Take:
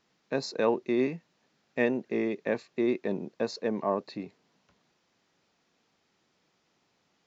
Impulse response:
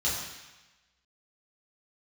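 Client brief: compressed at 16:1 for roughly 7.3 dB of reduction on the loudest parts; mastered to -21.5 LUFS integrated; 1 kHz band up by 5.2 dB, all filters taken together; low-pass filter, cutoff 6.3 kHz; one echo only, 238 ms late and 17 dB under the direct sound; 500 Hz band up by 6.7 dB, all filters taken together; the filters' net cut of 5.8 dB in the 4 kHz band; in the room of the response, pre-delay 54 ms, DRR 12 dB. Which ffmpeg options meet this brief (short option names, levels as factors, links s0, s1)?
-filter_complex "[0:a]lowpass=6300,equalizer=f=500:t=o:g=7.5,equalizer=f=1000:t=o:g=4,equalizer=f=4000:t=o:g=-6,acompressor=threshold=0.0891:ratio=16,aecho=1:1:238:0.141,asplit=2[s0][s1];[1:a]atrim=start_sample=2205,adelay=54[s2];[s1][s2]afir=irnorm=-1:irlink=0,volume=0.0944[s3];[s0][s3]amix=inputs=2:normalize=0,volume=2.37"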